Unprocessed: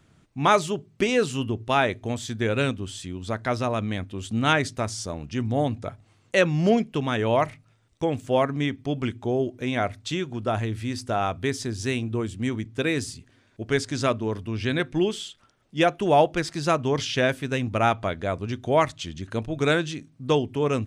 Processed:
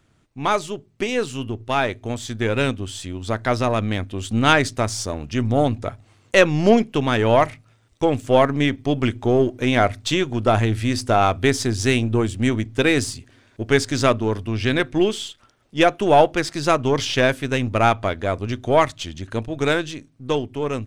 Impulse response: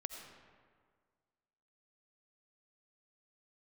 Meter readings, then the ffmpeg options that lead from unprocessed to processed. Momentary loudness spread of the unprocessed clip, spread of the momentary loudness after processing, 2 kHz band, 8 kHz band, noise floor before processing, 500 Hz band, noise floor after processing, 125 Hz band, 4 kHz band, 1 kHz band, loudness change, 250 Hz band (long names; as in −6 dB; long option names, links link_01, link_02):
10 LU, 12 LU, +5.0 dB, +5.5 dB, −61 dBFS, +5.0 dB, −59 dBFS, +4.5 dB, +5.0 dB, +4.5 dB, +5.0 dB, +5.0 dB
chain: -af "aeval=exprs='if(lt(val(0),0),0.708*val(0),val(0))':channel_layout=same,equalizer=frequency=170:width_type=o:width=0.39:gain=-6.5,dynaudnorm=framelen=520:gausssize=9:maxgain=11.5dB"